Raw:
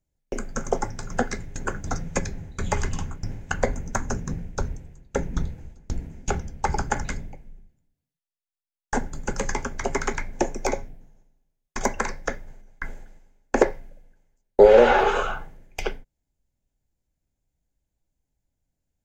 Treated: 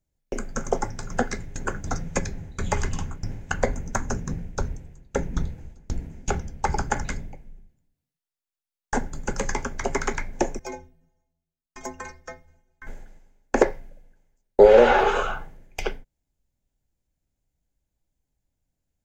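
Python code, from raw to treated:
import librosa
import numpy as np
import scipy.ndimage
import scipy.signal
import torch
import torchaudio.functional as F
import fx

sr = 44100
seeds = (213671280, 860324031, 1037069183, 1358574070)

y = fx.stiff_resonator(x, sr, f0_hz=77.0, decay_s=0.49, stiffness=0.03, at=(10.59, 12.87))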